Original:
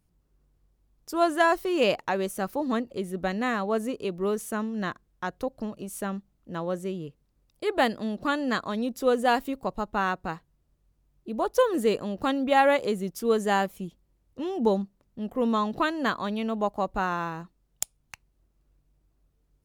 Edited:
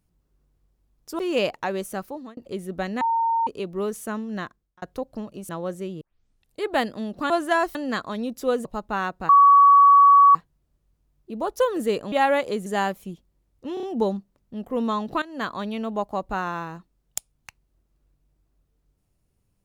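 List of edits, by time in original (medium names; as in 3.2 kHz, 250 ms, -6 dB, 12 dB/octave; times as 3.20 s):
1.19–1.64 s: move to 8.34 s
2.37–2.82 s: fade out
3.46–3.92 s: bleep 915 Hz -19 dBFS
4.81–5.27 s: fade out
5.94–6.53 s: delete
7.05 s: tape start 0.60 s
9.24–9.69 s: delete
10.33 s: add tone 1.13 kHz -9.5 dBFS 1.06 s
12.10–12.48 s: delete
13.02–13.40 s: delete
14.48 s: stutter 0.03 s, 4 plays
15.87–16.17 s: fade in, from -16 dB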